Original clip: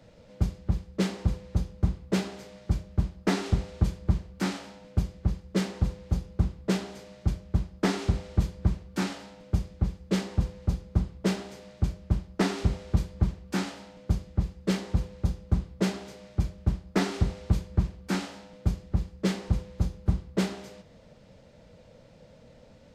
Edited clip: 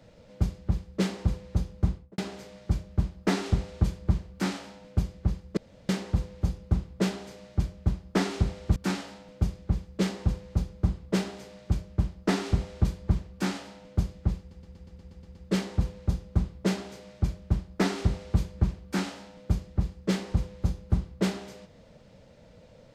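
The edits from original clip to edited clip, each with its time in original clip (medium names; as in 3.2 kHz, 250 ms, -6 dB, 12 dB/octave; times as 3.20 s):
1.90–2.18 s: studio fade out
5.57 s: insert room tone 0.32 s
8.44–8.88 s: delete
14.51 s: stutter 0.12 s, 9 plays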